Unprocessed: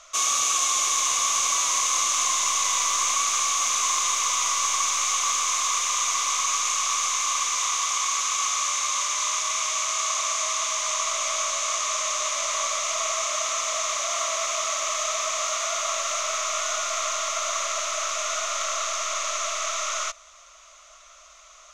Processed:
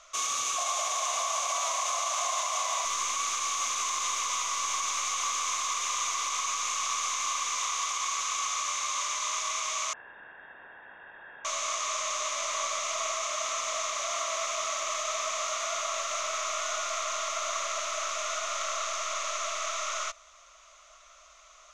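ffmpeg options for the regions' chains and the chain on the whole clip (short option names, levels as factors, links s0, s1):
-filter_complex "[0:a]asettb=1/sr,asplit=3[s0][s1][s2];[s0]atrim=end=0.564[s3];[s1]atrim=start=0.56:end=2.85,asetpts=PTS-STARTPTS,afade=t=in:d=0.004:c=qsin,afade=t=out:st=2.286:d=0.004:c=qsin,highpass=f=660:t=q:w=6.8,asplit=2[s4][s5];[s5]adelay=48,volume=0.251[s6];[s4][s6]amix=inputs=2:normalize=0,atrim=end_sample=100989[s7];[s2]atrim=start=2.846[s8];[s3][s7]acrossfade=d=0.004:c1=hsin:c2=qsin[s9];[s9][s8]acrossfade=d=0.004:c1=qsin:c2=hsin,asettb=1/sr,asplit=3[s10][s11][s12];[s10]atrim=end=9.934[s13];[s11]atrim=start=9.93:end=11.45,asetpts=PTS-STARTPTS,afade=t=in:d=0.004:c=qsin,afade=t=out:st=1.516:d=0.004:c=qsin,asplit=3[s14][s15][s16];[s14]bandpass=f=270:t=q:w=8,volume=1[s17];[s15]bandpass=f=2290:t=q:w=8,volume=0.501[s18];[s16]bandpass=f=3010:t=q:w=8,volume=0.355[s19];[s17][s18][s19]amix=inputs=3:normalize=0,lowpass=f=3300:t=q:w=0.5098,lowpass=f=3300:t=q:w=0.6013,lowpass=f=3300:t=q:w=0.9,lowpass=f=3300:t=q:w=2.563,afreqshift=-3900[s20];[s12]atrim=start=11.446[s21];[s13][s20]acrossfade=d=0.004:c1=hsin:c2=qsin[s22];[s22][s21]acrossfade=d=0.004:c1=qsin:c2=hsin,highshelf=f=5400:g=-5.5,alimiter=limit=0.141:level=0:latency=1:release=63,volume=0.668"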